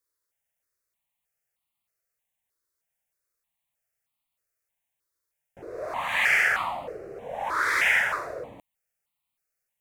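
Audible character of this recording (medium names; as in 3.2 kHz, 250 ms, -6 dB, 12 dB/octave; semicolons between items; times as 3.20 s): notches that jump at a steady rate 3.2 Hz 760–1600 Hz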